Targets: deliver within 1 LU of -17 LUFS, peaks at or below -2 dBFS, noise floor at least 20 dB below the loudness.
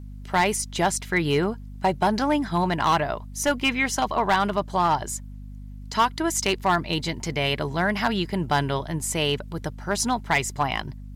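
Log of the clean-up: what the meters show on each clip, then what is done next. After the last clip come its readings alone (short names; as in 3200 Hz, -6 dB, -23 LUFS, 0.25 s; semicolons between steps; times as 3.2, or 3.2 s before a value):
clipped 0.5%; flat tops at -13.5 dBFS; hum 50 Hz; harmonics up to 250 Hz; hum level -36 dBFS; loudness -24.5 LUFS; peak -13.5 dBFS; loudness target -17.0 LUFS
-> clip repair -13.5 dBFS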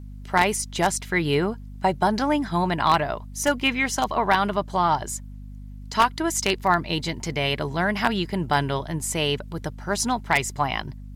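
clipped 0.0%; hum 50 Hz; harmonics up to 250 Hz; hum level -36 dBFS
-> de-hum 50 Hz, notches 5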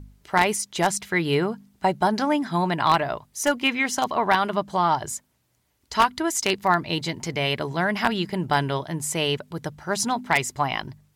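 hum none; loudness -24.0 LUFS; peak -4.5 dBFS; loudness target -17.0 LUFS
-> gain +7 dB; limiter -2 dBFS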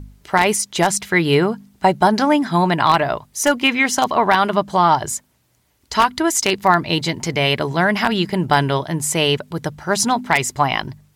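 loudness -17.5 LUFS; peak -2.0 dBFS; noise floor -61 dBFS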